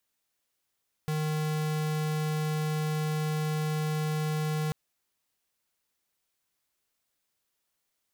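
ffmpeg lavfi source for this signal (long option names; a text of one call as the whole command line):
ffmpeg -f lavfi -i "aevalsrc='0.0335*(2*lt(mod(154*t,1),0.5)-1)':duration=3.64:sample_rate=44100" out.wav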